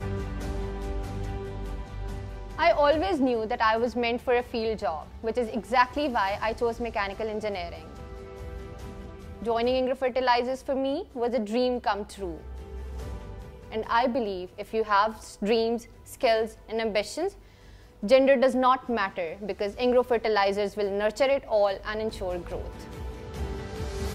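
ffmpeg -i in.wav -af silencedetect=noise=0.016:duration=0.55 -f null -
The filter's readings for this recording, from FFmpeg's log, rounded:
silence_start: 17.29
silence_end: 18.03 | silence_duration: 0.74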